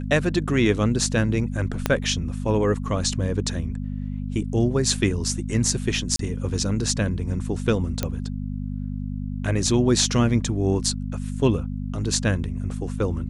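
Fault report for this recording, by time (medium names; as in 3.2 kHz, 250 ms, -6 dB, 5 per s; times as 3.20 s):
hum 50 Hz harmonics 5 -29 dBFS
1.86 s: pop -6 dBFS
6.16–6.19 s: dropout 33 ms
8.03 s: pop -9 dBFS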